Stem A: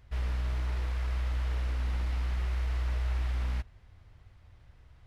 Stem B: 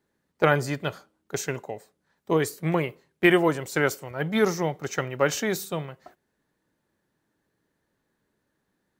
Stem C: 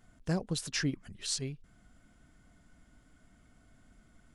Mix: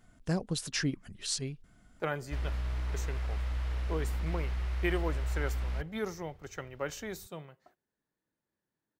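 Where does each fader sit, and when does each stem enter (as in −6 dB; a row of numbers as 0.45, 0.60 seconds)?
−2.5, −13.5, +0.5 decibels; 2.20, 1.60, 0.00 seconds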